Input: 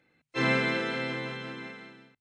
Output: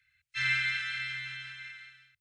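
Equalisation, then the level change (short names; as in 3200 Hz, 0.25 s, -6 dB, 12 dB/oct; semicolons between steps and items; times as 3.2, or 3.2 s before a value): inverse Chebyshev band-stop 220–730 Hz, stop band 60 dB; bell 130 Hz +7 dB 1.3 oct; bell 1500 Hz +7 dB 0.54 oct; 0.0 dB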